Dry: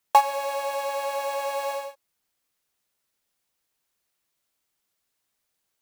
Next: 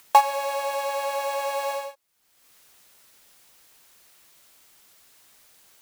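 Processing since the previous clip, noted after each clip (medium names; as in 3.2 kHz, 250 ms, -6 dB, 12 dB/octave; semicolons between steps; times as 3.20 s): bass shelf 420 Hz -3.5 dB; upward compressor, threshold -41 dBFS; trim +2 dB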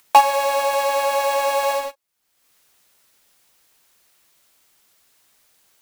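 waveshaping leveller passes 2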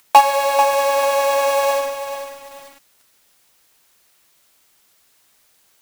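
bit-crushed delay 440 ms, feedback 35%, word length 6-bit, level -9 dB; trim +2 dB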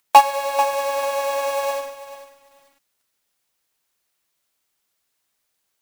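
upward expansion 1.5:1, over -36 dBFS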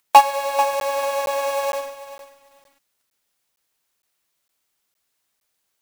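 crackling interface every 0.46 s, samples 512, zero, from 0.80 s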